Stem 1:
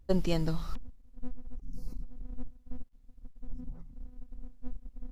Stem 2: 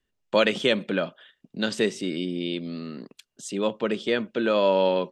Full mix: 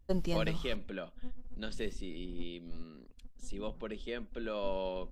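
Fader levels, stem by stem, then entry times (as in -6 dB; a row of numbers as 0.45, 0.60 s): -4.5, -15.5 dB; 0.00, 0.00 s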